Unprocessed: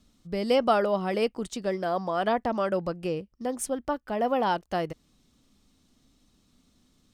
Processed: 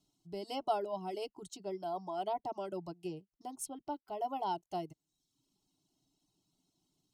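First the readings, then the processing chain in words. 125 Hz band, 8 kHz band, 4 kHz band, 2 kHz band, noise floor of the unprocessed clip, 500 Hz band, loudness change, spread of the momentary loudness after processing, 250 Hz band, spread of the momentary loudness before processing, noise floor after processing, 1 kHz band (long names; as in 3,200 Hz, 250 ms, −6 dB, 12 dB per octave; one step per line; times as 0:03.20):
−13.5 dB, −8.5 dB, −11.5 dB, −20.5 dB, −67 dBFS, −13.0 dB, −12.0 dB, 10 LU, −14.0 dB, 9 LU, below −85 dBFS, −9.0 dB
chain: phaser with its sweep stopped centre 340 Hz, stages 8
notch comb filter 1,200 Hz
reverb reduction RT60 0.71 s
level −7 dB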